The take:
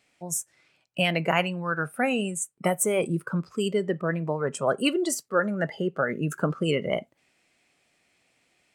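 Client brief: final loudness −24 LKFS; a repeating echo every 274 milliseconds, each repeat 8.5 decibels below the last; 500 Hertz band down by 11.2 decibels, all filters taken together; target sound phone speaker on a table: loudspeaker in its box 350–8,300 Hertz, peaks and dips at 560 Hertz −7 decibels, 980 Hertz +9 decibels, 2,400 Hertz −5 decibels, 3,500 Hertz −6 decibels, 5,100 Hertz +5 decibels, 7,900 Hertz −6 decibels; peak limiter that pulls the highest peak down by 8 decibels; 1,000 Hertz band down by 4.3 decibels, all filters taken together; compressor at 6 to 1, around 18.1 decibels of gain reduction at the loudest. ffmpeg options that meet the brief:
ffmpeg -i in.wav -af "equalizer=frequency=500:width_type=o:gain=-9,equalizer=frequency=1000:width_type=o:gain=-6.5,acompressor=threshold=-42dB:ratio=6,alimiter=level_in=11.5dB:limit=-24dB:level=0:latency=1,volume=-11.5dB,highpass=frequency=350:width=0.5412,highpass=frequency=350:width=1.3066,equalizer=frequency=560:width_type=q:width=4:gain=-7,equalizer=frequency=980:width_type=q:width=4:gain=9,equalizer=frequency=2400:width_type=q:width=4:gain=-5,equalizer=frequency=3500:width_type=q:width=4:gain=-6,equalizer=frequency=5100:width_type=q:width=4:gain=5,equalizer=frequency=7900:width_type=q:width=4:gain=-6,lowpass=frequency=8300:width=0.5412,lowpass=frequency=8300:width=1.3066,aecho=1:1:274|548|822|1096:0.376|0.143|0.0543|0.0206,volume=26.5dB" out.wav

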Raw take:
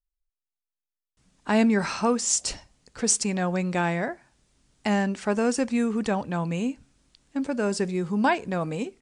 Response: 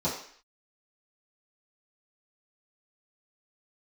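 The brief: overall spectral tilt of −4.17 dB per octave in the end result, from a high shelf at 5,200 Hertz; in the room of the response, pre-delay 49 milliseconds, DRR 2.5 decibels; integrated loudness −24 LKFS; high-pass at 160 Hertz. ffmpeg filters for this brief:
-filter_complex "[0:a]highpass=160,highshelf=frequency=5200:gain=7,asplit=2[link_01][link_02];[1:a]atrim=start_sample=2205,adelay=49[link_03];[link_02][link_03]afir=irnorm=-1:irlink=0,volume=-11.5dB[link_04];[link_01][link_04]amix=inputs=2:normalize=0,volume=-2.5dB"

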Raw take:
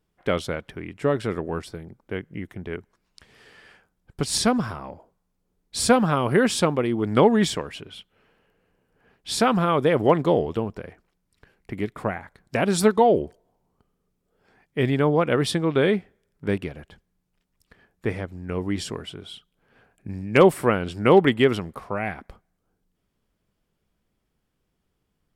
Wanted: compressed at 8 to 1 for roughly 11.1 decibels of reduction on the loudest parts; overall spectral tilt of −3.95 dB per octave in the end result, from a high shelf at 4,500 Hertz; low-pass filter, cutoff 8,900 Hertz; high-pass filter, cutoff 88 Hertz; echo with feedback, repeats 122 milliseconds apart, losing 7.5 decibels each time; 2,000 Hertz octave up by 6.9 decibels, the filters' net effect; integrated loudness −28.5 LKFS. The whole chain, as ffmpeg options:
ffmpeg -i in.wav -af "highpass=88,lowpass=8900,equalizer=frequency=2000:width_type=o:gain=7.5,highshelf=frequency=4500:gain=6,acompressor=threshold=-21dB:ratio=8,aecho=1:1:122|244|366|488|610:0.422|0.177|0.0744|0.0312|0.0131,volume=-1dB" out.wav

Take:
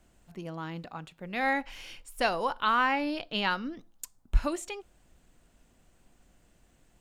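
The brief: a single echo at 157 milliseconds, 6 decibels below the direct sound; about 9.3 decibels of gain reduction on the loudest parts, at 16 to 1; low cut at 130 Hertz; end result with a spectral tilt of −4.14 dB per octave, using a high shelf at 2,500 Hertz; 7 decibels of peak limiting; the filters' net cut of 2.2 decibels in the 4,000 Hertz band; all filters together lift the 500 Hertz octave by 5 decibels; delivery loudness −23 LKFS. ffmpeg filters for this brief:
ffmpeg -i in.wav -af "highpass=130,equalizer=frequency=500:width_type=o:gain=6,highshelf=frequency=2500:gain=4,equalizer=frequency=4000:width_type=o:gain=-7,acompressor=threshold=-28dB:ratio=16,alimiter=level_in=2dB:limit=-24dB:level=0:latency=1,volume=-2dB,aecho=1:1:157:0.501,volume=14dB" out.wav

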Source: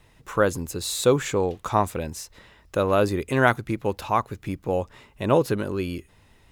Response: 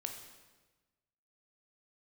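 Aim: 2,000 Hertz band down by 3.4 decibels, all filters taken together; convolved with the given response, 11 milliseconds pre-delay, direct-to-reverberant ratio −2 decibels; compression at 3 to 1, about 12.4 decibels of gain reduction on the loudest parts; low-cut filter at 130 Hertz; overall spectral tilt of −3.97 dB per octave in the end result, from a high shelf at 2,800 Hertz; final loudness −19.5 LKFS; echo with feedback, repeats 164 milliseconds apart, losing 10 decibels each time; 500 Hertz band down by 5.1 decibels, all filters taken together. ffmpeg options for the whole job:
-filter_complex "[0:a]highpass=130,equalizer=frequency=500:width_type=o:gain=-6,equalizer=frequency=2000:width_type=o:gain=-8,highshelf=frequency=2800:gain=8.5,acompressor=threshold=-34dB:ratio=3,aecho=1:1:164|328|492|656:0.316|0.101|0.0324|0.0104,asplit=2[link_01][link_02];[1:a]atrim=start_sample=2205,adelay=11[link_03];[link_02][link_03]afir=irnorm=-1:irlink=0,volume=3dB[link_04];[link_01][link_04]amix=inputs=2:normalize=0,volume=12.5dB"

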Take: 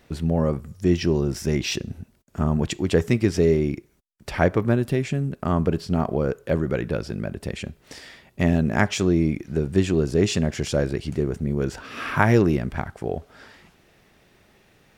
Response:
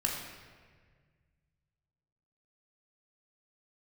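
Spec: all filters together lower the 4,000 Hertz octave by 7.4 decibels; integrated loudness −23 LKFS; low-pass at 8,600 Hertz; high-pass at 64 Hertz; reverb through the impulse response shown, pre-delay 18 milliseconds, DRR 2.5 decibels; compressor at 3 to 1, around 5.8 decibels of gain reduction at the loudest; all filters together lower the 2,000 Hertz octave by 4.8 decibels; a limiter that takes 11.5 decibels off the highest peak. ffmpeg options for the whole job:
-filter_complex "[0:a]highpass=64,lowpass=8600,equalizer=frequency=2000:width_type=o:gain=-4.5,equalizer=frequency=4000:width_type=o:gain=-8.5,acompressor=threshold=-21dB:ratio=3,alimiter=limit=-19dB:level=0:latency=1,asplit=2[link_01][link_02];[1:a]atrim=start_sample=2205,adelay=18[link_03];[link_02][link_03]afir=irnorm=-1:irlink=0,volume=-8.5dB[link_04];[link_01][link_04]amix=inputs=2:normalize=0,volume=6dB"

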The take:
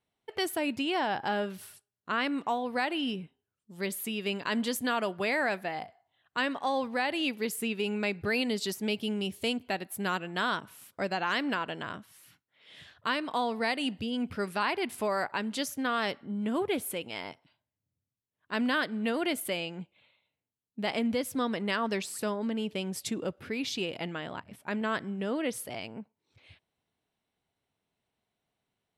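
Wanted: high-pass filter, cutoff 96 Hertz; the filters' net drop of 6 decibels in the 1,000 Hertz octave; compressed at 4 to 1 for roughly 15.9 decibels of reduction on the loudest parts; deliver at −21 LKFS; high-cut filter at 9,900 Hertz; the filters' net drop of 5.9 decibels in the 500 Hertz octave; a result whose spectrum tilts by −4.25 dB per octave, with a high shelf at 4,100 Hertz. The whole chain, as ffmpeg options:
ffmpeg -i in.wav -af "highpass=96,lowpass=9900,equalizer=frequency=500:width_type=o:gain=-6,equalizer=frequency=1000:width_type=o:gain=-5.5,highshelf=frequency=4100:gain=-6.5,acompressor=threshold=-48dB:ratio=4,volume=28dB" out.wav

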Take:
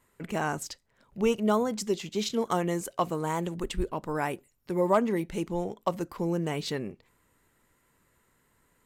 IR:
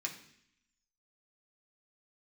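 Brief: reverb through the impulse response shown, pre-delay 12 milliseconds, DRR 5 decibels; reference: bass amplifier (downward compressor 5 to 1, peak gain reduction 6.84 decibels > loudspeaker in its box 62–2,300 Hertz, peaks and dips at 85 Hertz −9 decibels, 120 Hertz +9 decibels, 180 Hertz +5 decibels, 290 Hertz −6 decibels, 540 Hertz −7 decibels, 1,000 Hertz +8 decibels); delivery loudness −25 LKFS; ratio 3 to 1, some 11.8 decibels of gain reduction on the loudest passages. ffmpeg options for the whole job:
-filter_complex "[0:a]acompressor=threshold=-36dB:ratio=3,asplit=2[link_01][link_02];[1:a]atrim=start_sample=2205,adelay=12[link_03];[link_02][link_03]afir=irnorm=-1:irlink=0,volume=-6dB[link_04];[link_01][link_04]amix=inputs=2:normalize=0,acompressor=threshold=-36dB:ratio=5,highpass=frequency=62:width=0.5412,highpass=frequency=62:width=1.3066,equalizer=frequency=85:width_type=q:width=4:gain=-9,equalizer=frequency=120:width_type=q:width=4:gain=9,equalizer=frequency=180:width_type=q:width=4:gain=5,equalizer=frequency=290:width_type=q:width=4:gain=-6,equalizer=frequency=540:width_type=q:width=4:gain=-7,equalizer=frequency=1000:width_type=q:width=4:gain=8,lowpass=frequency=2300:width=0.5412,lowpass=frequency=2300:width=1.3066,volume=16dB"

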